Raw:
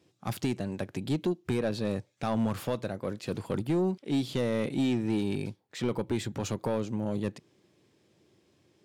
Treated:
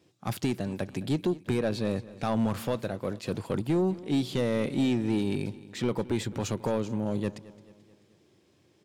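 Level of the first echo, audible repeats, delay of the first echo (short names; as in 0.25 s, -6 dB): -19.0 dB, 3, 0.218 s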